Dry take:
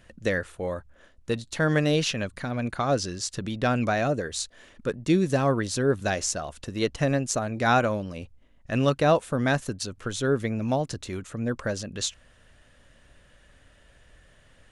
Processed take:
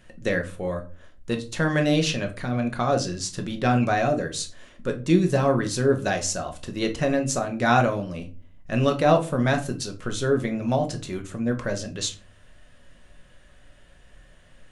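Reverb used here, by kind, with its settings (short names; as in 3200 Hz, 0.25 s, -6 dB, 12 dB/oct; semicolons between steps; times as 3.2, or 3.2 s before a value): shoebox room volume 210 m³, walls furnished, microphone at 1 m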